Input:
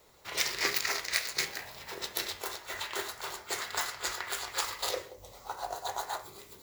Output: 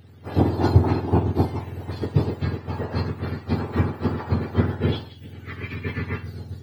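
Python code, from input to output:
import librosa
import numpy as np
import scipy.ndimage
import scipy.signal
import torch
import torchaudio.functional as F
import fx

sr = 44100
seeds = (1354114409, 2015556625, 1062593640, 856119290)

y = fx.octave_mirror(x, sr, pivot_hz=1300.0)
y = y * 10.0 ** (5.0 / 20.0)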